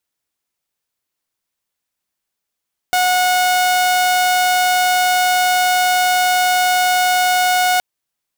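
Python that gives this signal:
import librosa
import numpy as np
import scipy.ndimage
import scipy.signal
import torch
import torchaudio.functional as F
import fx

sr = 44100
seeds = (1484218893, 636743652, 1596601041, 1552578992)

y = 10.0 ** (-10.0 / 20.0) * (2.0 * np.mod(730.0 * (np.arange(round(4.87 * sr)) / sr), 1.0) - 1.0)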